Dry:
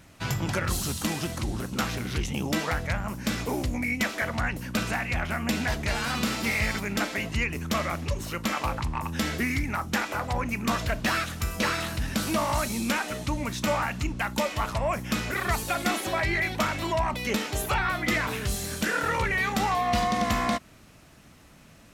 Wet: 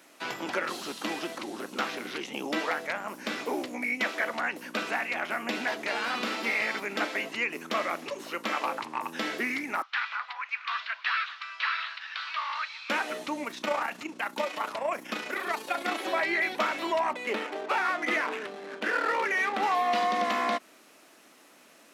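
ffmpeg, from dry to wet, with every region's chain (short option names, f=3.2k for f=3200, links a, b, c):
-filter_complex "[0:a]asettb=1/sr,asplit=3[a][b][c];[a]atrim=end=9.824[d];[b]atrim=start=9.82:end=12.9,asetpts=PTS-STARTPTS,afade=t=in:d=0.004:c=qsin,afade=t=out:st=3.076:d=0.004:c=qsin,asuperpass=centerf=2200:order=8:qfactor=0.66,aecho=1:1:594:0.119,atrim=end_sample=135828[e];[c]atrim=start=12.896[f];[d][e]acrossfade=d=0.004:c1=hsin:c2=qsin[g];[g][f]acrossfade=d=0.004:c1=qsin:c2=hsin,asettb=1/sr,asplit=3[h][i][j];[h]atrim=end=13.444[k];[i]atrim=start=13.44:end=16,asetpts=PTS-STARTPTS,afade=t=in:d=0.004:c=qsin,afade=t=out:st=2.556:d=0.004:c=qsin,tremolo=f=29:d=0.519,aecho=1:1:922:0.0841,atrim=end_sample=112896[l];[j]atrim=start=15.996[m];[k][l]acrossfade=d=0.004:c1=hsin:c2=qsin[n];[n][m]acrossfade=d=0.004:c1=qsin:c2=hsin,asettb=1/sr,asplit=3[o][p][q];[o]atrim=end=17.134[r];[p]atrim=start=17.13:end=19.63,asetpts=PTS-STARTPTS,afade=t=in:d=0.004:c=qsin,afade=t=out:st=2.496:d=0.004:c=qsin,highpass=190,lowpass=3.7k,adynamicsmooth=sensitivity=7.5:basefreq=770[s];[q]atrim=start=19.626[t];[r][s]acrossfade=d=0.004:c1=hsin:c2=qsin[u];[u][t]acrossfade=d=0.004:c1=qsin:c2=hsin,highpass=f=290:w=0.5412,highpass=f=290:w=1.3066,acrossover=split=4500[v][w];[w]acompressor=threshold=-52dB:ratio=4:attack=1:release=60[x];[v][x]amix=inputs=2:normalize=0,equalizer=f=11k:w=4.1:g=3.5"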